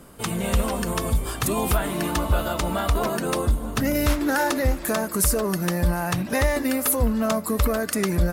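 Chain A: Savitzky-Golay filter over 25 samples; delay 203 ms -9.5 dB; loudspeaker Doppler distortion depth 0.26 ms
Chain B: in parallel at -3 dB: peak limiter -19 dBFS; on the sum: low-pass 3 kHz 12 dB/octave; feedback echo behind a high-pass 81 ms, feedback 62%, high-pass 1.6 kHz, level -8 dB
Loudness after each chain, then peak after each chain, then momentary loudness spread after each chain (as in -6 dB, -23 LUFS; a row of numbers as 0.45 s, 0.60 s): -24.5 LUFS, -21.5 LUFS; -10.0 dBFS, -8.5 dBFS; 3 LU, 3 LU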